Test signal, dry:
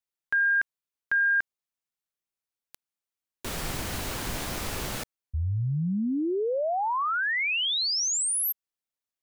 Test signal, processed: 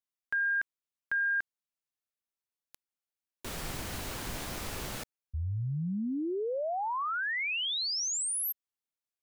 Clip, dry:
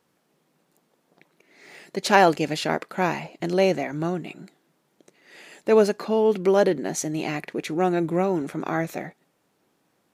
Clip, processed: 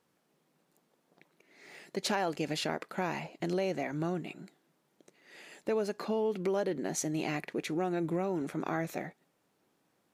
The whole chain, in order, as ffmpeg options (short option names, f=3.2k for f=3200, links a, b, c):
-af "acompressor=threshold=-21dB:ratio=5:attack=4.9:release=192:knee=1:detection=rms,volume=-5.5dB"